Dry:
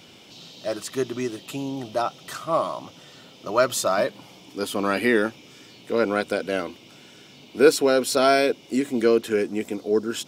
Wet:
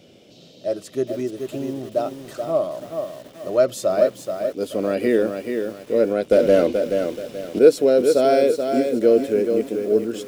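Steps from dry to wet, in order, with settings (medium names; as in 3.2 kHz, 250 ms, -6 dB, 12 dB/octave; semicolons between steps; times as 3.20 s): 6.31–7.59 s: waveshaping leveller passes 3; resonant low shelf 740 Hz +7 dB, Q 3; bit-crushed delay 430 ms, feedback 35%, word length 6-bit, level -6 dB; trim -7 dB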